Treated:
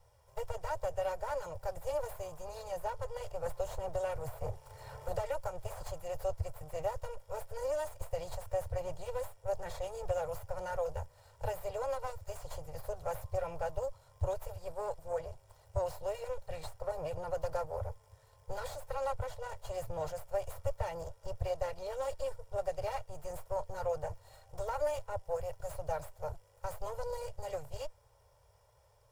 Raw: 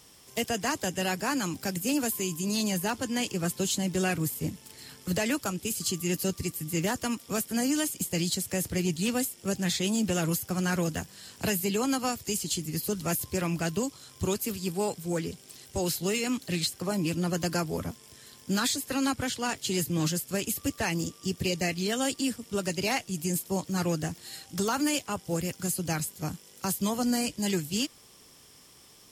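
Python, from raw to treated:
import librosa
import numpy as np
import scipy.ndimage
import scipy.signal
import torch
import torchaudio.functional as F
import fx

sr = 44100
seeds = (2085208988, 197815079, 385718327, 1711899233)

y = fx.lower_of_two(x, sr, delay_ms=2.1)
y = fx.curve_eq(y, sr, hz=(110.0, 210.0, 340.0, 600.0, 1700.0, 3000.0), db=(0, -30, -26, 2, -16, -23))
y = fx.band_squash(y, sr, depth_pct=70, at=(3.46, 5.83))
y = F.gain(torch.from_numpy(y), 2.5).numpy()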